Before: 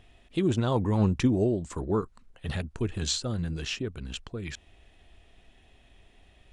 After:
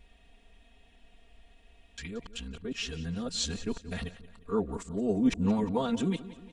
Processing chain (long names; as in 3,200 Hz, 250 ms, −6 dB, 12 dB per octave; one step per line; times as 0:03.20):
played backwards from end to start
comb filter 4.3 ms, depth 98%
repeating echo 177 ms, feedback 50%, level −16.5 dB
level −5.5 dB